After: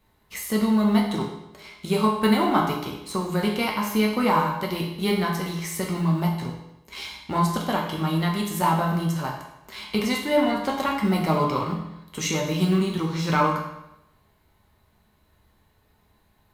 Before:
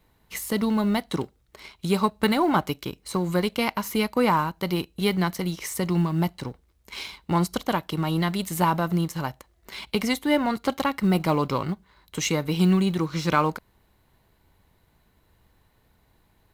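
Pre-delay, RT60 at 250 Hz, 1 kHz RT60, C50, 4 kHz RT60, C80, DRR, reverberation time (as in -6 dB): 5 ms, 0.90 s, 0.90 s, 4.5 dB, 0.80 s, 7.0 dB, -2.0 dB, 0.90 s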